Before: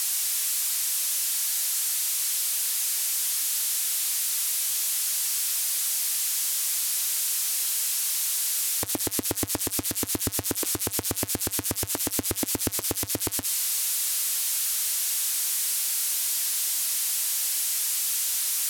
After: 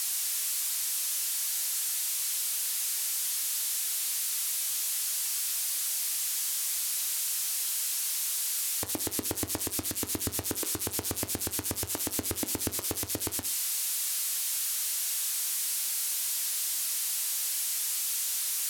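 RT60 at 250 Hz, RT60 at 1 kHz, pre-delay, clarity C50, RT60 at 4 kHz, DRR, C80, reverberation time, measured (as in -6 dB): 0.35 s, 0.40 s, 8 ms, 17.0 dB, 0.25 s, 10.0 dB, 22.5 dB, 0.40 s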